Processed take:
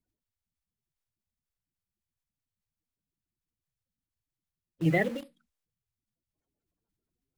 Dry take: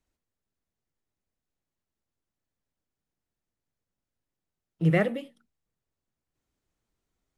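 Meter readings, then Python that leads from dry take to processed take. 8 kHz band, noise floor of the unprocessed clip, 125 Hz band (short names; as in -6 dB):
n/a, under -85 dBFS, -4.5 dB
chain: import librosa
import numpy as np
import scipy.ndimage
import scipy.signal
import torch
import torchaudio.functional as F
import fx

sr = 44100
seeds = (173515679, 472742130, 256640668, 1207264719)

p1 = fx.spec_quant(x, sr, step_db=30)
p2 = fx.quant_dither(p1, sr, seeds[0], bits=6, dither='none')
p3 = p1 + (p2 * 10.0 ** (-8.0 / 20.0))
y = p3 * 10.0 ** (-5.0 / 20.0)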